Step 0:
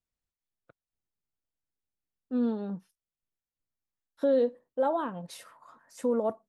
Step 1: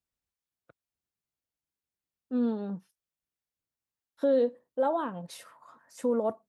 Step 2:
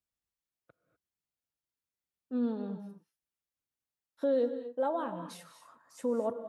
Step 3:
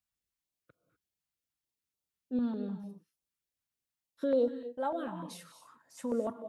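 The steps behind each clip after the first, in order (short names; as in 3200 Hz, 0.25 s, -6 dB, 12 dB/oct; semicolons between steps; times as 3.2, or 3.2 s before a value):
HPF 46 Hz
non-linear reverb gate 0.27 s rising, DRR 9.5 dB; gain -4 dB
stepped notch 6.7 Hz 410–1800 Hz; gain +1.5 dB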